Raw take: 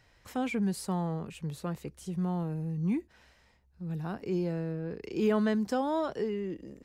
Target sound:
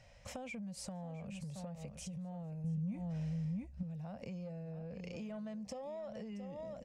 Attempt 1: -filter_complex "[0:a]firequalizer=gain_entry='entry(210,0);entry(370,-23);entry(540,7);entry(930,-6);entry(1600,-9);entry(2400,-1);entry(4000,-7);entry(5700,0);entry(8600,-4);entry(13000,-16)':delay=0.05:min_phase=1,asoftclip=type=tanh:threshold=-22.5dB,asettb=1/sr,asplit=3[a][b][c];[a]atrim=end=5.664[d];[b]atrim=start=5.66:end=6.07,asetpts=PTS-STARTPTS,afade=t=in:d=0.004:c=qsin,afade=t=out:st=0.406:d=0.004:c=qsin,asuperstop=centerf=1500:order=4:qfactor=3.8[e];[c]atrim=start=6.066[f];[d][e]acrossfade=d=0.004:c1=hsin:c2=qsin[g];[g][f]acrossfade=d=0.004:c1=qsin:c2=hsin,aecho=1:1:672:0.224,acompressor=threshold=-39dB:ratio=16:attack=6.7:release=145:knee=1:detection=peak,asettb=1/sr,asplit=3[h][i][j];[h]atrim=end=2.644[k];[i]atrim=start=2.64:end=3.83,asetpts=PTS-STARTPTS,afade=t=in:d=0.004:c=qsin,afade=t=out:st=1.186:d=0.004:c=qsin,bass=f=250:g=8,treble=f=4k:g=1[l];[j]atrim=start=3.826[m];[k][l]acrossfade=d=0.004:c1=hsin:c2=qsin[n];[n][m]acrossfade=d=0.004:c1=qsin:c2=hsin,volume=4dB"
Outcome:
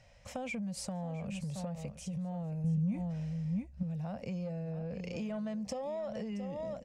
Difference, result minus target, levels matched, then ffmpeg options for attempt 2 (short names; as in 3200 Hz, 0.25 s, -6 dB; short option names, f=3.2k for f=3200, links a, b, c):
compressor: peak gain reduction -6.5 dB
-filter_complex "[0:a]firequalizer=gain_entry='entry(210,0);entry(370,-23);entry(540,7);entry(930,-6);entry(1600,-9);entry(2400,-1);entry(4000,-7);entry(5700,0);entry(8600,-4);entry(13000,-16)':delay=0.05:min_phase=1,asoftclip=type=tanh:threshold=-22.5dB,asettb=1/sr,asplit=3[a][b][c];[a]atrim=end=5.664[d];[b]atrim=start=5.66:end=6.07,asetpts=PTS-STARTPTS,afade=t=in:d=0.004:c=qsin,afade=t=out:st=0.406:d=0.004:c=qsin,asuperstop=centerf=1500:order=4:qfactor=3.8[e];[c]atrim=start=6.066[f];[d][e]acrossfade=d=0.004:c1=hsin:c2=qsin[g];[g][f]acrossfade=d=0.004:c1=qsin:c2=hsin,aecho=1:1:672:0.224,acompressor=threshold=-46dB:ratio=16:attack=6.7:release=145:knee=1:detection=peak,asettb=1/sr,asplit=3[h][i][j];[h]atrim=end=2.644[k];[i]atrim=start=2.64:end=3.83,asetpts=PTS-STARTPTS,afade=t=in:d=0.004:c=qsin,afade=t=out:st=1.186:d=0.004:c=qsin,bass=f=250:g=8,treble=f=4k:g=1[l];[j]atrim=start=3.826[m];[k][l]acrossfade=d=0.004:c1=hsin:c2=qsin[n];[n][m]acrossfade=d=0.004:c1=qsin:c2=hsin,volume=4dB"